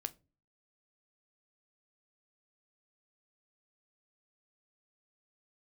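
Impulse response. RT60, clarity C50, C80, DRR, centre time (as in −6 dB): non-exponential decay, 23.0 dB, 29.5 dB, 10.5 dB, 4 ms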